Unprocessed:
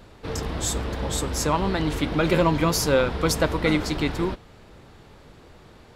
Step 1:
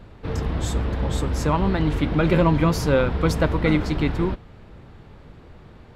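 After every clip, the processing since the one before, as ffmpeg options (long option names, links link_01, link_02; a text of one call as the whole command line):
ffmpeg -i in.wav -af "bass=frequency=250:gain=6,treble=frequency=4000:gain=-10" out.wav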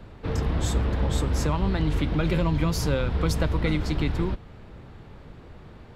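ffmpeg -i in.wav -filter_complex "[0:a]acrossover=split=130|3000[link_01][link_02][link_03];[link_02]acompressor=threshold=-27dB:ratio=3[link_04];[link_01][link_04][link_03]amix=inputs=3:normalize=0" out.wav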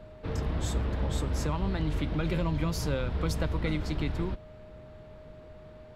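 ffmpeg -i in.wav -af "aeval=exprs='val(0)+0.00631*sin(2*PI*620*n/s)':channel_layout=same,volume=-5.5dB" out.wav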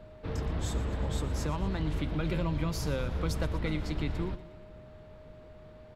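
ffmpeg -i in.wav -af "aecho=1:1:119|238|357|476|595:0.168|0.0923|0.0508|0.0279|0.0154,volume=-2dB" out.wav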